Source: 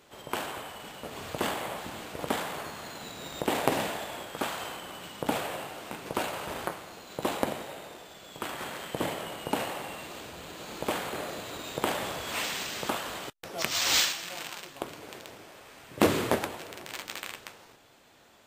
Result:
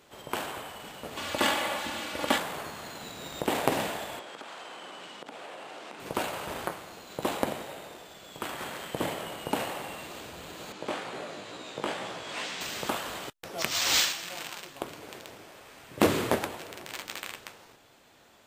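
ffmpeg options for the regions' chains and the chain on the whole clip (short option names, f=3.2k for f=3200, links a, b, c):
-filter_complex "[0:a]asettb=1/sr,asplit=3[a][b][c];[a]atrim=end=1.174[d];[b]atrim=start=1.17:end=2.38,asetpts=PTS-STARTPTS,afade=t=in:d=0.004:c=qsin,afade=t=out:st=1.206:d=0.004:c=qsin,highpass=62,equalizer=f=3k:w=0.38:g=7,aecho=1:1:3.5:0.61,atrim=end_sample=53361[e];[c]atrim=start=2.376[f];[d][e]acrossfade=d=0.004:c1=hsin:c2=qsin[g];[g][f]acrossfade=d=0.004:c1=qsin:c2=hsin,asettb=1/sr,asplit=3[h][i][j];[h]atrim=end=4.194[k];[i]atrim=start=4.19:end=6,asetpts=PTS-STARTPTS,afade=t=in:d=0.004:c=qsin,afade=t=out:st=1.806:d=0.004:c=qsin,acompressor=threshold=-38dB:ratio=16:attack=3.2:release=140:knee=1:detection=peak,highpass=260,lowpass=6.5k[l];[j]atrim=start=5.996[m];[k][l]acrossfade=d=0.004:c1=hsin:c2=qsin[n];[n][m]acrossfade=d=0.004:c1=qsin:c2=hsin,asettb=1/sr,asplit=3[o][p][q];[o]atrim=end=10.724[r];[p]atrim=start=10.72:end=12.61,asetpts=PTS-STARTPTS,afade=t=in:d=0.004:c=qsin,afade=t=out:st=1.886:d=0.004:c=qsin,flanger=delay=15.5:depth=4.4:speed=2.2,highpass=130,lowpass=6.9k[s];[q]atrim=start=12.606[t];[r][s]acrossfade=d=0.004:c1=hsin:c2=qsin[u];[u][t]acrossfade=d=0.004:c1=qsin:c2=hsin"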